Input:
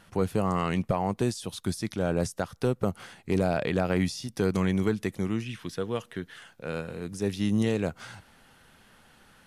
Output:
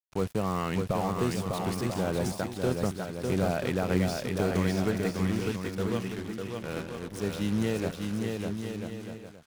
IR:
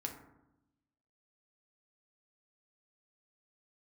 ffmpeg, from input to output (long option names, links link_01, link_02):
-filter_complex "[0:a]aeval=exprs='val(0)+0.00224*(sin(2*PI*50*n/s)+sin(2*PI*2*50*n/s)/2+sin(2*PI*3*50*n/s)/3+sin(2*PI*4*50*n/s)/4+sin(2*PI*5*50*n/s)/5)':channel_layout=same,acrusher=bits=5:mix=0:aa=0.5,asplit=2[link_01][link_02];[link_02]aecho=0:1:600|990|1244|1408|1515:0.631|0.398|0.251|0.158|0.1[link_03];[link_01][link_03]amix=inputs=2:normalize=0,volume=-3dB"